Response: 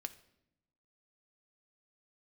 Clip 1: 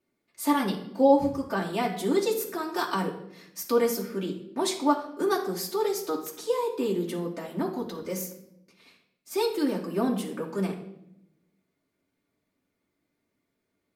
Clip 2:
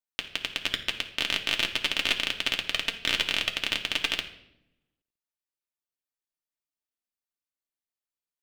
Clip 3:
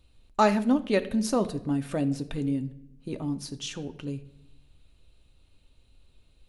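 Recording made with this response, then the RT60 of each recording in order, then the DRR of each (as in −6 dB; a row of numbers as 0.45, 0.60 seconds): 3; 0.80, 0.80, 0.80 seconds; −4.0, 2.0, 7.5 decibels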